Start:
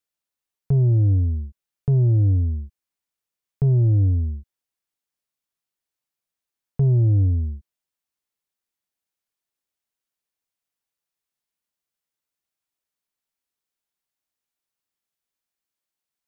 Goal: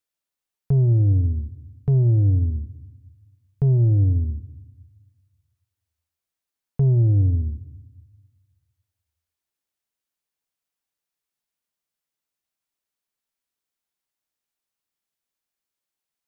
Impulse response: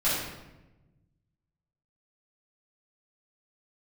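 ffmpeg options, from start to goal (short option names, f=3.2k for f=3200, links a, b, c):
-filter_complex "[0:a]asplit=2[a][b];[1:a]atrim=start_sample=2205,adelay=51[c];[b][c]afir=irnorm=-1:irlink=0,volume=-30.5dB[d];[a][d]amix=inputs=2:normalize=0"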